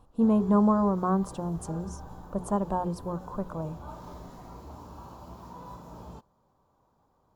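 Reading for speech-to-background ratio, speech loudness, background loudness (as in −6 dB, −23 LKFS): 17.5 dB, −28.0 LKFS, −45.5 LKFS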